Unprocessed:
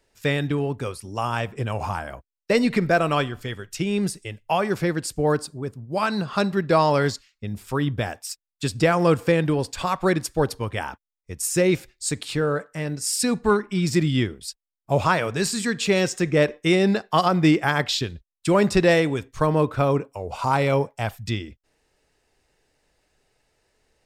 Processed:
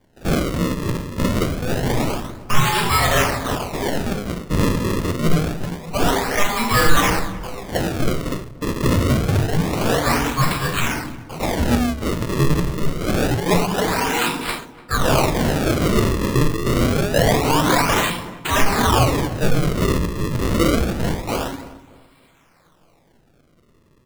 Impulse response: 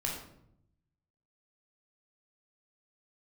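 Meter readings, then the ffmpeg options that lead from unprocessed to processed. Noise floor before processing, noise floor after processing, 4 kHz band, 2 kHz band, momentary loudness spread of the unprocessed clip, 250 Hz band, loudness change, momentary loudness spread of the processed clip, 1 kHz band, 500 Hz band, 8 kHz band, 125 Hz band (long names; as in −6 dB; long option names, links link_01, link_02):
below −85 dBFS, −56 dBFS, +5.0 dB, +4.0 dB, 12 LU, +2.5 dB, +3.0 dB, 9 LU, +4.0 dB, 0.0 dB, +3.5 dB, +5.0 dB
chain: -filter_complex "[0:a]asplit=2[link_01][link_02];[link_02]highpass=frequency=720:poles=1,volume=20dB,asoftclip=type=tanh:threshold=-6dB[link_03];[link_01][link_03]amix=inputs=2:normalize=0,lowpass=frequency=4700:poles=1,volume=-6dB,tiltshelf=frequency=970:gain=-3.5,bandreject=frequency=50:width_type=h:width=6,bandreject=frequency=100:width_type=h:width=6,bandreject=frequency=150:width_type=h:width=6,bandreject=frequency=200:width_type=h:width=6,bandreject=frequency=250:width_type=h:width=6,bandreject=frequency=300:width_type=h:width=6,bandreject=frequency=350:width_type=h:width=6,bandreject=frequency=400:width_type=h:width=6,aeval=exprs='val(0)*sin(2*PI*610*n/s)':channel_layout=same,flanger=delay=5.6:depth=3.2:regen=67:speed=0.22:shape=triangular[link_04];[1:a]atrim=start_sample=2205[link_05];[link_04][link_05]afir=irnorm=-1:irlink=0,acrossover=split=180[link_06][link_07];[link_07]acrusher=samples=33:mix=1:aa=0.000001:lfo=1:lforange=52.8:lforate=0.26[link_08];[link_06][link_08]amix=inputs=2:normalize=0,asplit=2[link_09][link_10];[link_10]adelay=294,lowpass=frequency=1400:poles=1,volume=-17.5dB,asplit=2[link_11][link_12];[link_12]adelay=294,lowpass=frequency=1400:poles=1,volume=0.38,asplit=2[link_13][link_14];[link_14]adelay=294,lowpass=frequency=1400:poles=1,volume=0.38[link_15];[link_09][link_11][link_13][link_15]amix=inputs=4:normalize=0,asplit=2[link_16][link_17];[link_17]asoftclip=type=tanh:threshold=-18.5dB,volume=-4dB[link_18];[link_16][link_18]amix=inputs=2:normalize=0,volume=-1dB"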